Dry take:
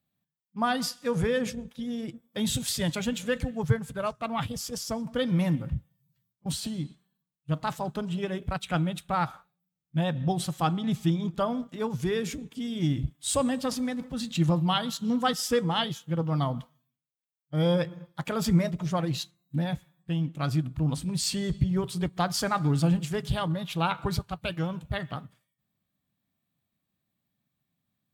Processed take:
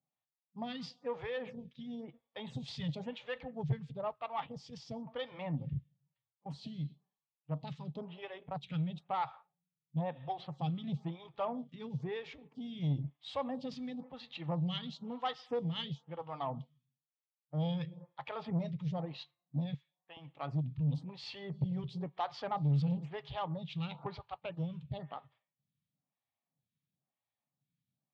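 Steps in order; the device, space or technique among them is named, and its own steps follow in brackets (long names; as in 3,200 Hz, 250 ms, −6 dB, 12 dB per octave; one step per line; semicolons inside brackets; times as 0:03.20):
0:19.74–0:20.17: high-pass filter 690 Hz 12 dB per octave
vibe pedal into a guitar amplifier (phaser with staggered stages 1 Hz; tube saturation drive 22 dB, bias 0.2; loudspeaker in its box 100–4,000 Hz, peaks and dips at 140 Hz +7 dB, 210 Hz −5 dB, 330 Hz −7 dB, 840 Hz +6 dB, 1,500 Hz −9 dB)
level −5.5 dB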